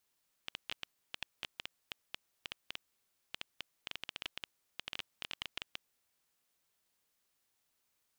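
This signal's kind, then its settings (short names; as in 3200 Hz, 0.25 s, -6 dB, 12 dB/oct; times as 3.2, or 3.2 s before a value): random clicks 8.7/s -21.5 dBFS 5.74 s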